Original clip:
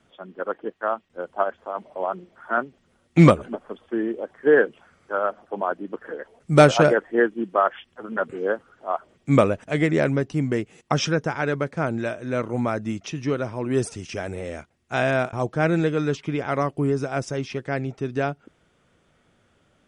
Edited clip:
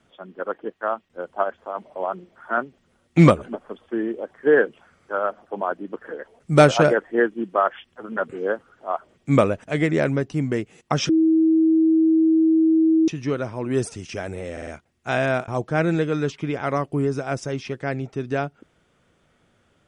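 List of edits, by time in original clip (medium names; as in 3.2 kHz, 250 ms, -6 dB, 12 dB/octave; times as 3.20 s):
11.09–13.08 s: bleep 321 Hz -13.5 dBFS
14.52 s: stutter 0.05 s, 4 plays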